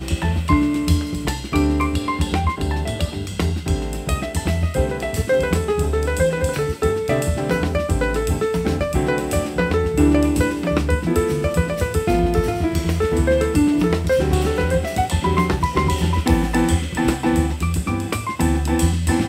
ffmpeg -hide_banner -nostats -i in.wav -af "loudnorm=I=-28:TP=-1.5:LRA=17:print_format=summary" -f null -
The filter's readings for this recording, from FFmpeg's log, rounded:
Input Integrated:    -20.2 LUFS
Input True Peak:      -5.4 dBTP
Input LRA:             2.8 LU
Input Threshold:     -30.2 LUFS